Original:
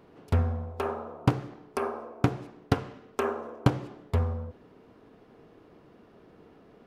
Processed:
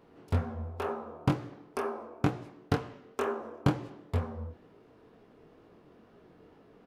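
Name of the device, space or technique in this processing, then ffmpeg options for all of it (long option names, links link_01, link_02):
double-tracked vocal: -filter_complex "[0:a]asplit=2[link_01][link_02];[link_02]adelay=27,volume=-12.5dB[link_03];[link_01][link_03]amix=inputs=2:normalize=0,flanger=delay=17:depth=7.9:speed=2.1"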